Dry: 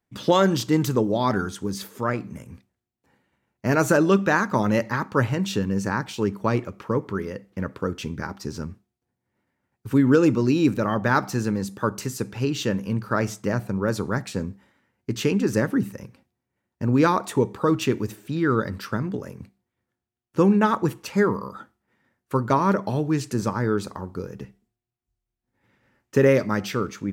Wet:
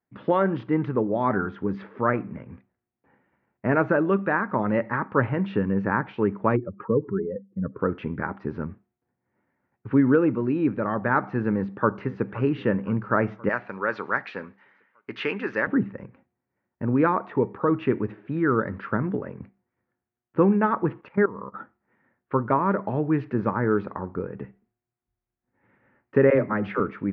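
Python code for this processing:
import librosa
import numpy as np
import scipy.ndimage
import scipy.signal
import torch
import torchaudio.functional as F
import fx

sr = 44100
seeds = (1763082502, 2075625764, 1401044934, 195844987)

y = fx.spec_expand(x, sr, power=2.3, at=(6.55, 7.79), fade=0.02)
y = fx.echo_throw(y, sr, start_s=11.56, length_s=0.74, ms=520, feedback_pct=60, wet_db=-16.5)
y = fx.weighting(y, sr, curve='ITU-R 468', at=(13.49, 15.67))
y = fx.level_steps(y, sr, step_db=19, at=(21.01, 21.54))
y = fx.dispersion(y, sr, late='lows', ms=56.0, hz=310.0, at=(26.3, 26.8))
y = scipy.signal.sosfilt(scipy.signal.cheby2(4, 70, 8400.0, 'lowpass', fs=sr, output='sos'), y)
y = fx.low_shelf(y, sr, hz=87.0, db=-11.5)
y = fx.rider(y, sr, range_db=3, speed_s=0.5)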